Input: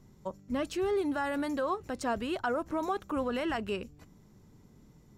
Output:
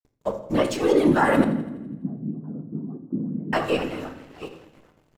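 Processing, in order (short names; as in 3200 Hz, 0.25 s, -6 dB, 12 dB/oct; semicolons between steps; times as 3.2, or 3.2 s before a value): regenerating reverse delay 0.408 s, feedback 52%, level -12 dB; gate -44 dBFS, range -6 dB; comb 7 ms, depth 96%; whisperiser; crossover distortion -55.5 dBFS; 1.44–3.53 Butterworth band-pass 180 Hz, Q 1.7; thinning echo 83 ms, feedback 58%, high-pass 190 Hz, level -17 dB; shoebox room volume 220 m³, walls mixed, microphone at 0.44 m; gain +7 dB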